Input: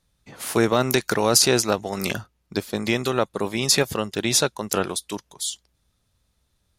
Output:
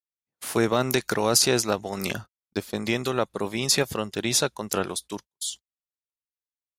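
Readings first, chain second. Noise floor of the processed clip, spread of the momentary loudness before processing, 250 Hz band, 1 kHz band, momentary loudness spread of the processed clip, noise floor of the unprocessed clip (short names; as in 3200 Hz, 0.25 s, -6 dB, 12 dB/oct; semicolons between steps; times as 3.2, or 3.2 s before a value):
under -85 dBFS, 13 LU, -3.0 dB, -3.0 dB, 13 LU, -71 dBFS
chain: gate -35 dBFS, range -45 dB; gain -3 dB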